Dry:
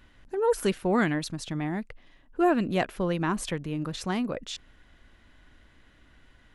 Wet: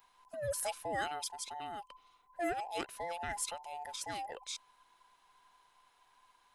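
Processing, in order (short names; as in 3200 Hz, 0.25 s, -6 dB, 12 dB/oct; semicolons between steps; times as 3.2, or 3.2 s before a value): band inversion scrambler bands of 1000 Hz; pre-emphasis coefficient 0.8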